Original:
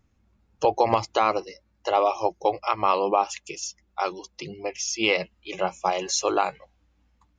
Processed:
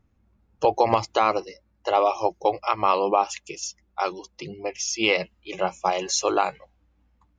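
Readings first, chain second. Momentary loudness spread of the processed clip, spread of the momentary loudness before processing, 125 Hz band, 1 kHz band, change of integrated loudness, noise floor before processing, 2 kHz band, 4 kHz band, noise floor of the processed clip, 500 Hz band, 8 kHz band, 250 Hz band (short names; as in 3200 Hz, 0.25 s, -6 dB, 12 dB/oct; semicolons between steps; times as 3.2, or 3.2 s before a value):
12 LU, 12 LU, +1.0 dB, +1.0 dB, +1.0 dB, -68 dBFS, +1.0 dB, +1.0 dB, -67 dBFS, +1.0 dB, +1.0 dB, +1.0 dB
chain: mismatched tape noise reduction decoder only; gain +1 dB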